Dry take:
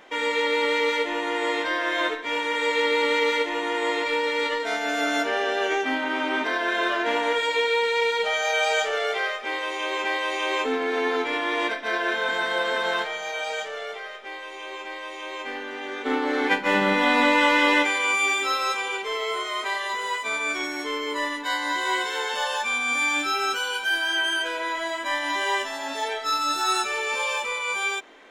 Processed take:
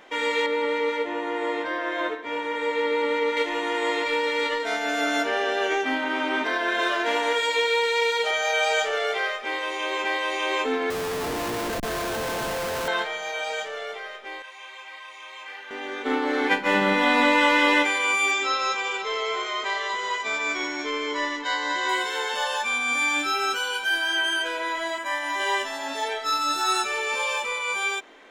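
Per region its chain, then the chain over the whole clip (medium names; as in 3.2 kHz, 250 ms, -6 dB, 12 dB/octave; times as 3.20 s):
0.46–3.37 s: high-pass 50 Hz + treble shelf 2.3 kHz -12 dB
6.79–8.31 s: high-pass 180 Hz 24 dB/octave + tone controls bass -6 dB, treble +5 dB
10.90–12.88 s: low-pass 1.1 kHz + Schmitt trigger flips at -38 dBFS
14.42–15.71 s: high-pass 910 Hz + detune thickener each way 22 cents
18.31–21.89 s: careless resampling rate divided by 3×, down none, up filtered + delay 539 ms -13 dB
24.98–25.40 s: high-pass 430 Hz 6 dB/octave + peaking EQ 3.8 kHz -6 dB 0.9 oct
whole clip: none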